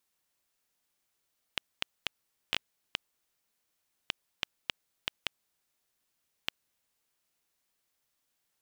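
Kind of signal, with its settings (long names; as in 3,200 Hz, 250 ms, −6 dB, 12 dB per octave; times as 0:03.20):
Geiger counter clicks 2.6 per second −10.5 dBFS 5.18 s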